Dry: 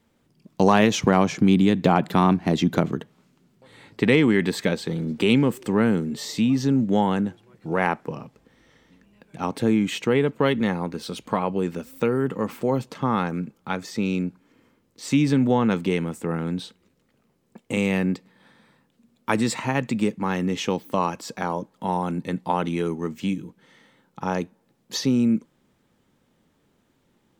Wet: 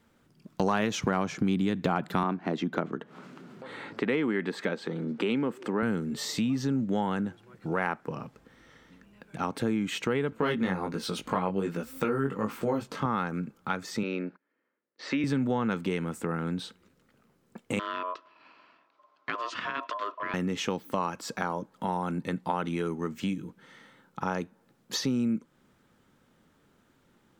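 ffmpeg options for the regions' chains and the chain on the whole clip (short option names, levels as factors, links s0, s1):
-filter_complex "[0:a]asettb=1/sr,asplit=3[s0][s1][s2];[s0]atrim=end=2.234[s3];[s1]atrim=start=2.23:end=5.83,asetpts=PTS-STARTPTS,afade=t=in:d=0.004:c=qsin,afade=t=out:st=3.596:d=0.004:c=qsin,highpass=220,aemphasis=mode=reproduction:type=75kf,acompressor=mode=upward:threshold=0.0251:ratio=2.5:attack=3.2:release=140:knee=2.83:detection=peak[s4];[s2]atrim=start=5.826[s5];[s3][s4]acrossfade=d=0.004:c1=hsin:c2=qsin[s6];[s6][s5]acrossfade=d=0.004:c1=qsin:c2=hsin,asettb=1/sr,asplit=3[s7][s8][s9];[s7]atrim=end=10.304[s10];[s8]atrim=start=10.3:end=13.06,asetpts=PTS-STARTPTS,afade=t=in:d=0.004:c=qsin,afade=t=out:st=2.756:d=0.004:c=qsin,acontrast=25,flanger=delay=17.5:depth=4.2:speed=1.3[s11];[s9]atrim=start=13.056[s12];[s10][s11]acrossfade=d=0.004:c1=hsin:c2=qsin[s13];[s13][s12]acrossfade=d=0.004:c1=qsin:c2=hsin,asettb=1/sr,asplit=3[s14][s15][s16];[s14]atrim=end=14.034[s17];[s15]atrim=start=14.03:end=15.24,asetpts=PTS-STARTPTS,afade=t=in:d=0.004:c=qsin,afade=t=out:st=1.206:d=0.004:c=qsin,agate=range=0.0891:threshold=0.00355:ratio=16:release=100:detection=peak,highpass=290,equalizer=f=370:t=q:w=4:g=3,equalizer=f=580:t=q:w=4:g=7,equalizer=f=1800:t=q:w=4:g=8,equalizer=f=3400:t=q:w=4:g=-4,lowpass=f=4400:w=0.5412,lowpass=f=4400:w=1.3066[s18];[s16]atrim=start=15.236[s19];[s17][s18]acrossfade=d=0.004:c1=hsin:c2=qsin[s20];[s20][s19]acrossfade=d=0.004:c1=qsin:c2=hsin,asettb=1/sr,asplit=3[s21][s22][s23];[s21]atrim=end=17.794[s24];[s22]atrim=start=17.79:end=20.34,asetpts=PTS-STARTPTS,afade=t=in:d=0.004:c=qsin,afade=t=out:st=2.546:d=0.004:c=qsin,acompressor=threshold=0.0355:ratio=2:attack=3.2:release=140:knee=1:detection=peak,aeval=exprs='val(0)*sin(2*PI*820*n/s)':c=same,highpass=220,equalizer=f=260:t=q:w=4:g=5,equalizer=f=570:t=q:w=4:g=-7,equalizer=f=2400:t=q:w=4:g=3,lowpass=f=5100:w=0.5412,lowpass=f=5100:w=1.3066[s25];[s23]atrim=start=20.336[s26];[s24][s25]acrossfade=d=0.004:c1=hsin:c2=qsin[s27];[s27][s26]acrossfade=d=0.004:c1=qsin:c2=hsin,equalizer=f=1400:t=o:w=0.56:g=6.5,acompressor=threshold=0.0282:ratio=2"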